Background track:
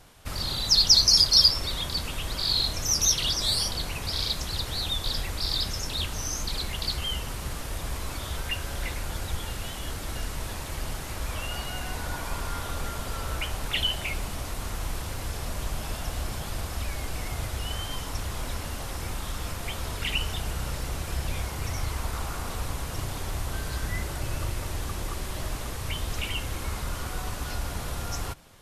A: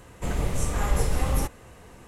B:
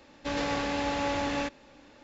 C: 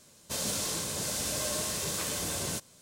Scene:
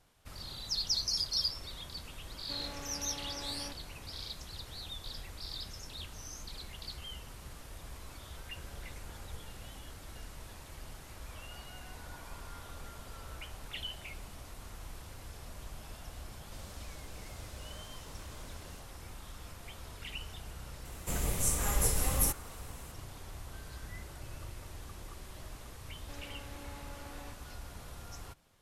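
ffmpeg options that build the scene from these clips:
ffmpeg -i bed.wav -i cue0.wav -i cue1.wav -i cue2.wav -filter_complex "[2:a]asplit=2[link_01][link_02];[1:a]asplit=2[link_03][link_04];[0:a]volume=-14.5dB[link_05];[link_01]asoftclip=type=tanh:threshold=-34.5dB[link_06];[link_03]acompressor=threshold=-33dB:ratio=6:attack=3.2:release=140:knee=1:detection=peak[link_07];[3:a]lowpass=frequency=3200:poles=1[link_08];[link_04]aemphasis=mode=production:type=75fm[link_09];[link_02]acompressor=threshold=-35dB:ratio=6:attack=3.2:release=140:knee=1:detection=peak[link_10];[link_06]atrim=end=2.03,asetpts=PTS-STARTPTS,volume=-9dB,afade=type=in:duration=0.004:curve=hsin,afade=type=out:start_time=2.026:duration=0.004:curve=hsin,adelay=2240[link_11];[link_07]atrim=end=2.07,asetpts=PTS-STARTPTS,volume=-16dB,afade=type=in:duration=0.004:curve=hsin,afade=type=out:start_time=2.066:duration=0.004:curve=hsin,adelay=8350[link_12];[link_08]atrim=end=2.81,asetpts=PTS-STARTPTS,volume=-17.5dB,afade=type=in:duration=0.004:curve=hsin,afade=type=out:start_time=2.806:duration=0.004:curve=hsin,adelay=16210[link_13];[link_09]atrim=end=2.07,asetpts=PTS-STARTPTS,volume=-7dB,afade=type=in:duration=0.004:curve=hsin,afade=type=out:start_time=2.066:duration=0.004:curve=hsin,adelay=20850[link_14];[link_10]atrim=end=2.03,asetpts=PTS-STARTPTS,volume=-12.5dB,afade=type=in:duration=0.004:curve=hsin,afade=type=out:start_time=2.026:duration=0.004:curve=hsin,adelay=25840[link_15];[link_05][link_11][link_12][link_13][link_14][link_15]amix=inputs=6:normalize=0" out.wav

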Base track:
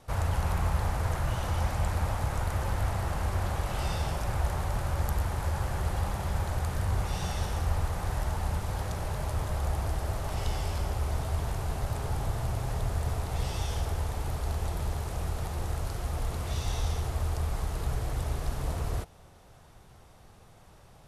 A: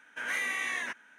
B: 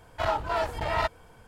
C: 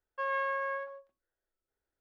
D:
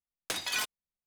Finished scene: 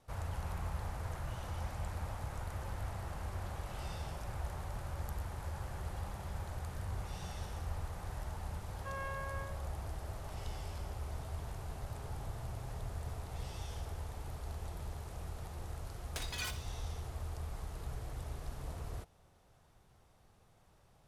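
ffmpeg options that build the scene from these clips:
ffmpeg -i bed.wav -i cue0.wav -i cue1.wav -i cue2.wav -i cue3.wav -filter_complex "[0:a]volume=-11.5dB[link_01];[4:a]aecho=1:1:64|128|192|256:0.211|0.0824|0.0321|0.0125[link_02];[3:a]atrim=end=2,asetpts=PTS-STARTPTS,volume=-10.5dB,afade=type=in:duration=0.004:curve=hsin,afade=type=out:start_time=1.996:duration=0.004:curve=hsin,adelay=8670[link_03];[link_02]atrim=end=1.06,asetpts=PTS-STARTPTS,volume=-9dB,afade=type=in:duration=0.004:curve=hsin,afade=type=out:start_time=1.056:duration=0.004:curve=hsin,adelay=15860[link_04];[link_01][link_03][link_04]amix=inputs=3:normalize=0" out.wav

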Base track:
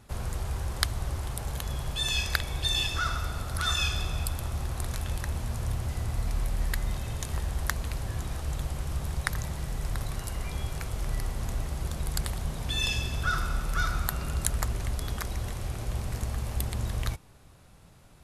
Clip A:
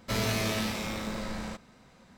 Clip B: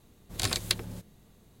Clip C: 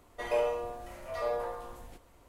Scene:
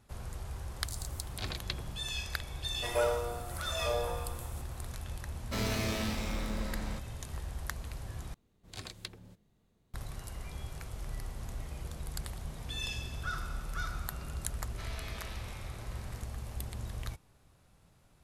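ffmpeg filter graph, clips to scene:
ffmpeg -i bed.wav -i cue0.wav -i cue1.wav -i cue2.wav -filter_complex "[2:a]asplit=2[link_01][link_02];[3:a]asplit=2[link_03][link_04];[1:a]asplit=2[link_05][link_06];[0:a]volume=-9dB[link_07];[link_01]acrossover=split=5300[link_08][link_09];[link_08]adelay=500[link_10];[link_10][link_09]amix=inputs=2:normalize=0[link_11];[link_03]highshelf=frequency=6300:width_type=q:width=1.5:gain=11[link_12];[link_05]equalizer=frequency=280:width_type=o:width=0.77:gain=3[link_13];[link_02]highshelf=frequency=7100:gain=-9.5[link_14];[link_04]asplit=3[link_15][link_16][link_17];[link_15]bandpass=frequency=270:width_type=q:width=8,volume=0dB[link_18];[link_16]bandpass=frequency=2290:width_type=q:width=8,volume=-6dB[link_19];[link_17]bandpass=frequency=3010:width_type=q:width=8,volume=-9dB[link_20];[link_18][link_19][link_20]amix=inputs=3:normalize=0[link_21];[link_06]highpass=750,lowpass=4400[link_22];[link_07]asplit=2[link_23][link_24];[link_23]atrim=end=8.344[link_25];[link_14]atrim=end=1.6,asetpts=PTS-STARTPTS,volume=-13dB[link_26];[link_24]atrim=start=9.936[link_27];[link_11]atrim=end=1.6,asetpts=PTS-STARTPTS,volume=-7.5dB,afade=type=in:duration=0.004:curve=hsin,afade=type=out:start_time=1.596:duration=0.004:curve=hsin,adelay=490[link_28];[link_12]atrim=end=2.28,asetpts=PTS-STARTPTS,volume=-1dB,afade=type=in:duration=0.004:curve=hsin,afade=type=out:start_time=2.276:duration=0.004:curve=hsin,adelay=2640[link_29];[link_13]atrim=end=2.17,asetpts=PTS-STARTPTS,volume=-5dB,afade=type=in:duration=0.004:curve=hsin,afade=type=out:start_time=2.166:duration=0.004:curve=hsin,adelay=5430[link_30];[link_21]atrim=end=2.28,asetpts=PTS-STARTPTS,volume=-8dB,afade=type=in:duration=0.004:curve=hsin,afade=type=out:start_time=2.276:duration=0.004:curve=hsin,adelay=11400[link_31];[link_22]atrim=end=2.17,asetpts=PTS-STARTPTS,volume=-13dB,afade=type=in:duration=0.004:curve=hsin,afade=type=out:start_time=2.166:duration=0.004:curve=hsin,adelay=14690[link_32];[link_25][link_26]acrossfade=duration=0.004:curve1=hsin:curve2=hsin[link_33];[link_33][link_27]acrossfade=duration=0.004:curve1=hsin:curve2=hsin[link_34];[link_34][link_28][link_29][link_30][link_31][link_32]amix=inputs=6:normalize=0" out.wav

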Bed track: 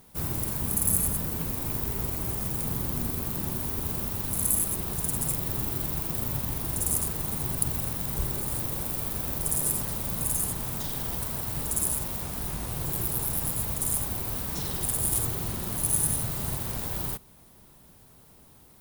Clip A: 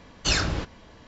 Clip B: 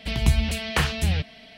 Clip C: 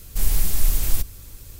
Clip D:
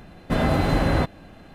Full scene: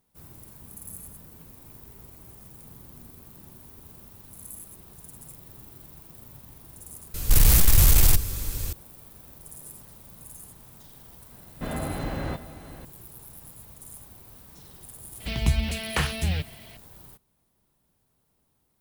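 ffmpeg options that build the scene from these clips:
ffmpeg -i bed.wav -i cue0.wav -i cue1.wav -i cue2.wav -i cue3.wav -filter_complex "[0:a]volume=-17dB[link_01];[3:a]aeval=exprs='0.596*sin(PI/2*4.47*val(0)/0.596)':channel_layout=same[link_02];[4:a]aecho=1:1:662:0.211[link_03];[link_02]atrim=end=1.59,asetpts=PTS-STARTPTS,volume=-6.5dB,afade=type=in:duration=0.004:curve=hsin,afade=type=out:start_time=1.586:duration=0.004:curve=hsin,adelay=314874S[link_04];[link_03]atrim=end=1.54,asetpts=PTS-STARTPTS,volume=-10.5dB,afade=type=in:duration=0.004:curve=hsin,afade=type=out:start_time=1.536:duration=0.004:curve=hsin,adelay=11310[link_05];[2:a]atrim=end=1.57,asetpts=PTS-STARTPTS,volume=-3dB,afade=type=in:duration=0.004:curve=hsin,afade=type=out:start_time=1.566:duration=0.004:curve=hsin,adelay=15200[link_06];[link_01][link_04][link_05][link_06]amix=inputs=4:normalize=0" out.wav

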